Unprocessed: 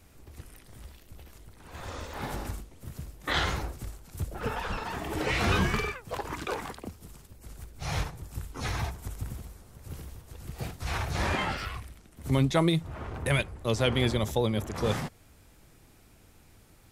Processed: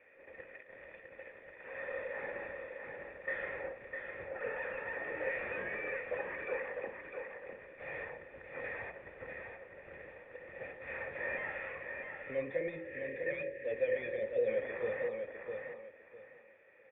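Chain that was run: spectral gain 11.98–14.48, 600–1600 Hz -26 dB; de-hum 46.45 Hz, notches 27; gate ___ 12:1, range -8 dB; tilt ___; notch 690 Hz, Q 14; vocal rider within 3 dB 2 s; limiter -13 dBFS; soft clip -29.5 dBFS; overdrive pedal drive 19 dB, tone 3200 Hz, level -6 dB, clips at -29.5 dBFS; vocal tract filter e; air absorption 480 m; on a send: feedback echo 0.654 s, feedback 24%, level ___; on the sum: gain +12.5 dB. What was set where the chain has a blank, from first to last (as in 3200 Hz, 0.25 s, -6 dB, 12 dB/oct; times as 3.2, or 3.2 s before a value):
-50 dBFS, +4.5 dB/oct, -5.5 dB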